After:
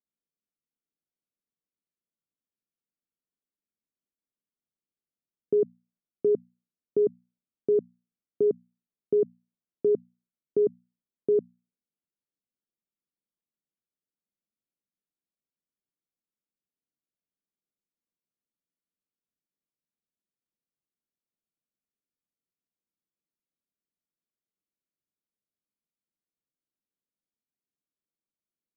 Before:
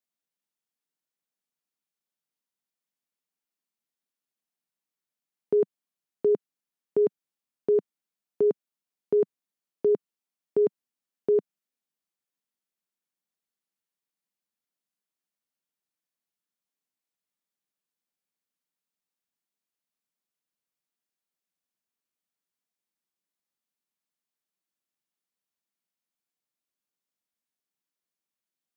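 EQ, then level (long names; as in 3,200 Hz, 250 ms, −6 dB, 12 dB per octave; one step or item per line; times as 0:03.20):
moving average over 49 samples
mains-hum notches 60/120/180/240 Hz
+2.5 dB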